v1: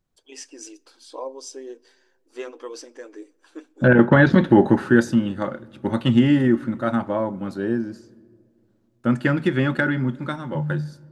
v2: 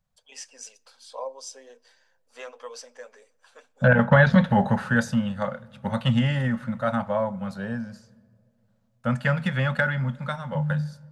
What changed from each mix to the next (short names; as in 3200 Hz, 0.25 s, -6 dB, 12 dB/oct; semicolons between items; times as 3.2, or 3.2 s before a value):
master: add Chebyshev band-stop 200–540 Hz, order 2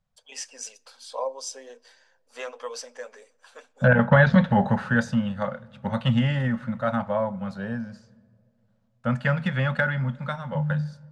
first voice +4.5 dB; second voice: add air absorption 62 m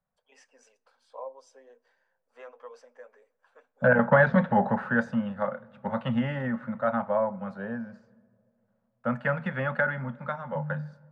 first voice -9.5 dB; master: add three-band isolator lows -13 dB, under 210 Hz, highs -18 dB, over 2100 Hz